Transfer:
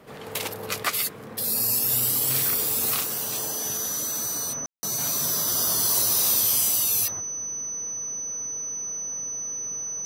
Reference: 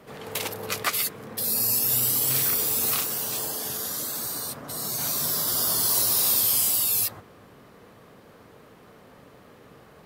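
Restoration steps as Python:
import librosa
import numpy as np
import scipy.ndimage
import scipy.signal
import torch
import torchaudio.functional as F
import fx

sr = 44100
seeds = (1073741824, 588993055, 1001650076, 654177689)

y = fx.notch(x, sr, hz=6000.0, q=30.0)
y = fx.fix_ambience(y, sr, seeds[0], print_start_s=0.0, print_end_s=0.5, start_s=4.66, end_s=4.83)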